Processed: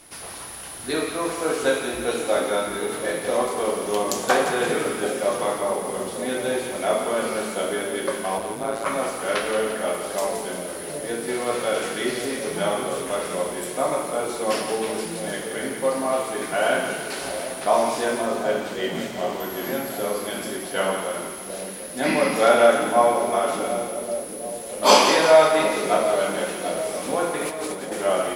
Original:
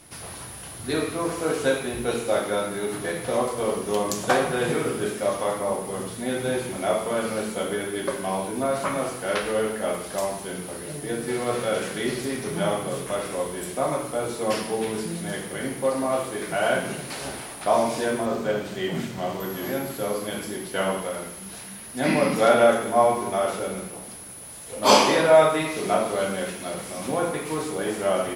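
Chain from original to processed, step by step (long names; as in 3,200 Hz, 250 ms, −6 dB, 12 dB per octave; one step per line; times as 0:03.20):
parametric band 110 Hz −11.5 dB 1.6 octaves
0:08.38–0:08.86: amplitude modulation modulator 110 Hz, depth 95%
0:27.39–0:27.92: compressor whose output falls as the input rises −33 dBFS, ratio −0.5
on a send: echo with a time of its own for lows and highs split 660 Hz, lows 738 ms, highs 172 ms, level −8 dB
on the sum: level +2 dB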